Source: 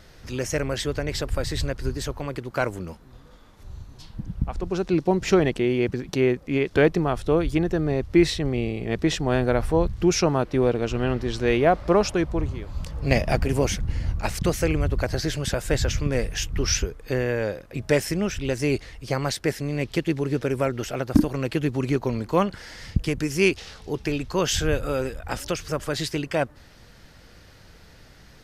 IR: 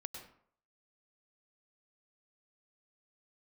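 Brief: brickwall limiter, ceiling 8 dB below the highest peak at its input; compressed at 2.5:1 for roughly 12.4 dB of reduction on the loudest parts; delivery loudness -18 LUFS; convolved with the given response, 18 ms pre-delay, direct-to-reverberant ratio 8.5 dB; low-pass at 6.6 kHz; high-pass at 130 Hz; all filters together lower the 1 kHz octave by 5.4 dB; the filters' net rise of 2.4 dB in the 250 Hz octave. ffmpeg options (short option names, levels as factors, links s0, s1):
-filter_complex "[0:a]highpass=130,lowpass=6600,equalizer=f=250:t=o:g=4.5,equalizer=f=1000:t=o:g=-8.5,acompressor=threshold=0.0398:ratio=2.5,alimiter=limit=0.1:level=0:latency=1,asplit=2[s0][s1];[1:a]atrim=start_sample=2205,adelay=18[s2];[s1][s2]afir=irnorm=-1:irlink=0,volume=0.531[s3];[s0][s3]amix=inputs=2:normalize=0,volume=4.73"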